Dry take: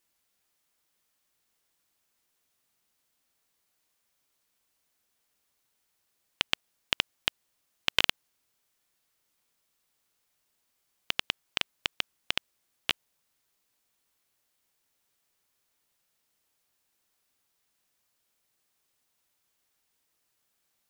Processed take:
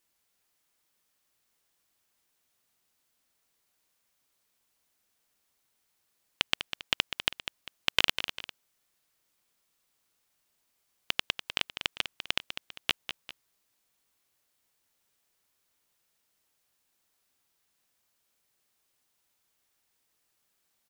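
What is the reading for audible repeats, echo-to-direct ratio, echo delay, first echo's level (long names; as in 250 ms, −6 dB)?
2, −9.0 dB, 199 ms, −9.5 dB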